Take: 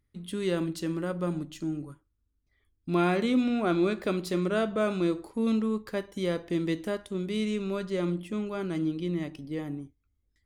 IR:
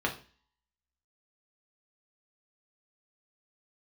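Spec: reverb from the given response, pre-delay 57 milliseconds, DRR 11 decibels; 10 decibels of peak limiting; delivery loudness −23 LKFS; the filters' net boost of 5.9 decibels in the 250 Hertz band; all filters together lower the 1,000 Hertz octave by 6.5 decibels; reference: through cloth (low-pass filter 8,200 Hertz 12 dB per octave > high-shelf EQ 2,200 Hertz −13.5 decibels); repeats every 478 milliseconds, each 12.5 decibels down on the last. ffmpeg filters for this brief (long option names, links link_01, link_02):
-filter_complex "[0:a]equalizer=frequency=250:width_type=o:gain=8.5,equalizer=frequency=1000:width_type=o:gain=-7.5,alimiter=limit=-19dB:level=0:latency=1,aecho=1:1:478|956|1434:0.237|0.0569|0.0137,asplit=2[link_01][link_02];[1:a]atrim=start_sample=2205,adelay=57[link_03];[link_02][link_03]afir=irnorm=-1:irlink=0,volume=-19.5dB[link_04];[link_01][link_04]amix=inputs=2:normalize=0,lowpass=8200,highshelf=frequency=2200:gain=-13.5,volume=4.5dB"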